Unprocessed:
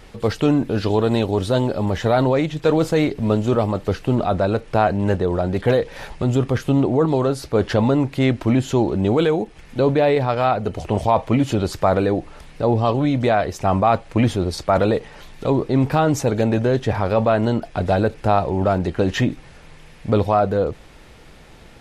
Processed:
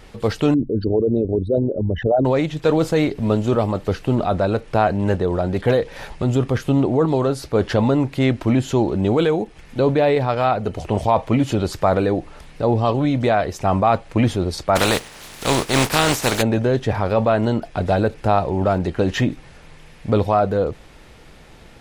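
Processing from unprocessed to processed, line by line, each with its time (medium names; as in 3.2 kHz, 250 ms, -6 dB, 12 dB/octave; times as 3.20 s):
0.54–2.25 s: resonances exaggerated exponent 3
14.75–16.41 s: spectral contrast reduction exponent 0.41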